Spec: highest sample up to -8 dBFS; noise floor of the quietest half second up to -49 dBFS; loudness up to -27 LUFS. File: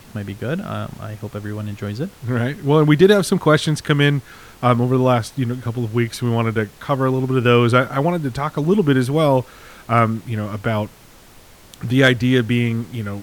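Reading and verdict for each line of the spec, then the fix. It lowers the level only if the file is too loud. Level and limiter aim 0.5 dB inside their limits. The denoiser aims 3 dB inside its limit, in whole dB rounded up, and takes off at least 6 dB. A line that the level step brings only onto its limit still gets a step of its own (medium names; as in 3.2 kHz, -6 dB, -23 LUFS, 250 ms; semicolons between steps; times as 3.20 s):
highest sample -1.5 dBFS: fail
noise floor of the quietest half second -45 dBFS: fail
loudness -18.5 LUFS: fail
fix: trim -9 dB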